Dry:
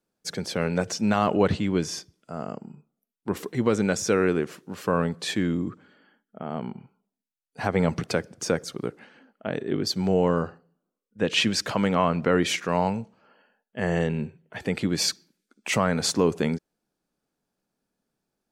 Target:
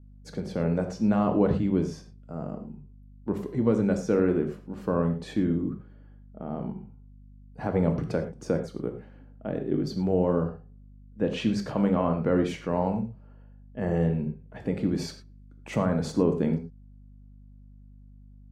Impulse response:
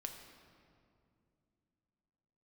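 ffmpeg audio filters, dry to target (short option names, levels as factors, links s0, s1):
-filter_complex "[1:a]atrim=start_sample=2205,afade=t=out:st=0.18:d=0.01,atrim=end_sample=8379,asetrate=48510,aresample=44100[s0];[0:a][s0]afir=irnorm=-1:irlink=0,aeval=exprs='val(0)+0.002*(sin(2*PI*50*n/s)+sin(2*PI*2*50*n/s)/2+sin(2*PI*3*50*n/s)/3+sin(2*PI*4*50*n/s)/4+sin(2*PI*5*50*n/s)/5)':c=same,tiltshelf=f=1200:g=9,volume=0.668"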